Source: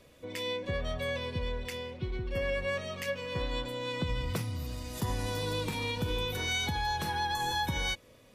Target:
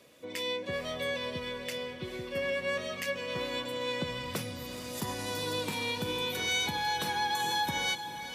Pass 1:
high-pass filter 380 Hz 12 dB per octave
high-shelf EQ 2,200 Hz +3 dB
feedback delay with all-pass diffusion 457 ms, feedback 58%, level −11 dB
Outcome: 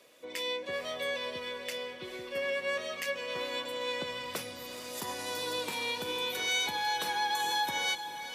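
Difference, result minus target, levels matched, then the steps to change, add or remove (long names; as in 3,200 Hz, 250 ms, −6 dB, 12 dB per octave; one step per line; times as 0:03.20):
125 Hz band −12.0 dB
change: high-pass filter 170 Hz 12 dB per octave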